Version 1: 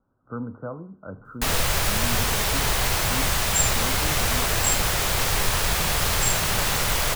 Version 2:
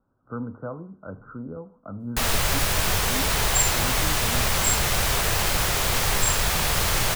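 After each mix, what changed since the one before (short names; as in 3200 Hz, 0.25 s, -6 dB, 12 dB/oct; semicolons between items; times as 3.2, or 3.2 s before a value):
first sound: entry +0.75 s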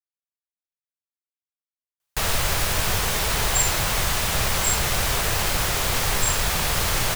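speech: muted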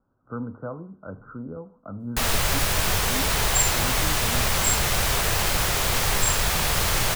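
speech: unmuted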